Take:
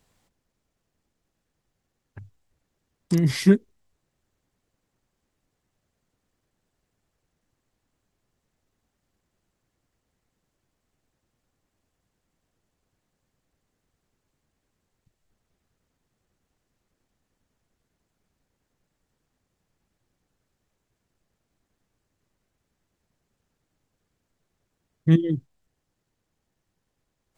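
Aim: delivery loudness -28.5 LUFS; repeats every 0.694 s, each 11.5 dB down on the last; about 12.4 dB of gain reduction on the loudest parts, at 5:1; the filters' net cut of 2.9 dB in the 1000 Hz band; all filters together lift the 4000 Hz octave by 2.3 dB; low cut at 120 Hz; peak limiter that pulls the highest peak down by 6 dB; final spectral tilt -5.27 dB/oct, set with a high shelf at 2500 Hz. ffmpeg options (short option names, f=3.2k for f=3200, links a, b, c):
-af "highpass=120,equalizer=f=1k:t=o:g=-3.5,highshelf=f=2.5k:g=-3,equalizer=f=4k:t=o:g=6,acompressor=threshold=-26dB:ratio=5,alimiter=limit=-23dB:level=0:latency=1,aecho=1:1:694|1388|2082:0.266|0.0718|0.0194,volume=9.5dB"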